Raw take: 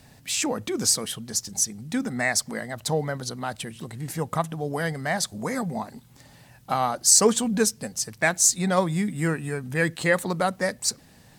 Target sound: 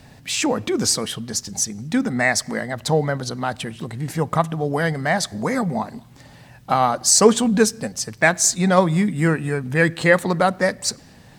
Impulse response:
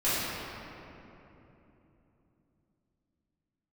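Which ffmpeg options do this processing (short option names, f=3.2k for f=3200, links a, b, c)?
-filter_complex "[0:a]equalizer=f=13k:t=o:w=1.6:g=-9,asplit=2[a][b];[1:a]atrim=start_sample=2205,afade=t=out:st=0.3:d=0.01,atrim=end_sample=13671[c];[b][c]afir=irnorm=-1:irlink=0,volume=-35.5dB[d];[a][d]amix=inputs=2:normalize=0,volume=6.5dB"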